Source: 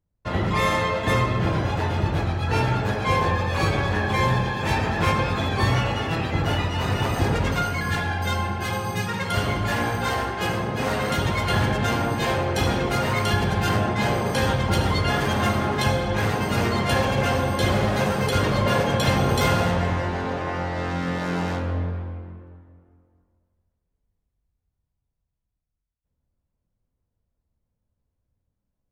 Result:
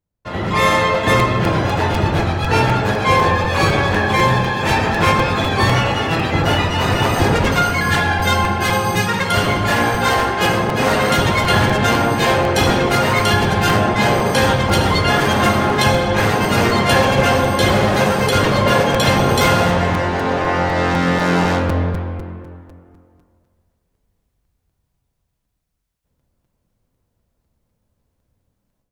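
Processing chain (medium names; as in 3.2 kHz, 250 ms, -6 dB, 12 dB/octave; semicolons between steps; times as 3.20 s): level rider gain up to 13 dB; bass shelf 130 Hz -7 dB; crackling interface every 0.25 s, samples 256, repeat, from 0.94 s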